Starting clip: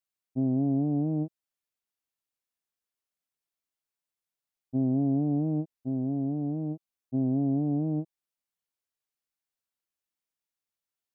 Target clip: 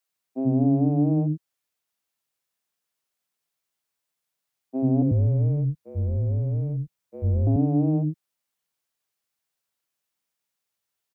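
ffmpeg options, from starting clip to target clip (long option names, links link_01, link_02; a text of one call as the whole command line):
ffmpeg -i in.wav -filter_complex "[0:a]asettb=1/sr,asplit=3[link_01][link_02][link_03];[link_01]atrim=end=5.024[link_04];[link_02]atrim=start=5.02:end=7.47,asetpts=PTS-STARTPTS,afade=type=in:duration=0.004:curve=qsin,afade=type=out:start_time=2.446:duration=0.004:curve=qsin,afreqshift=-170[link_05];[link_03]atrim=start=7.466[link_06];[link_04][link_05]acrossfade=duration=0.004:curve1=hsin:curve2=qsin[link_07];[link_07][link_06]acrossfade=duration=0.004:curve1=qsin:curve2=hsin,highpass=83,acrossover=split=290[link_08][link_09];[link_08]adelay=90[link_10];[link_10][link_09]amix=inputs=2:normalize=0,volume=8dB" out.wav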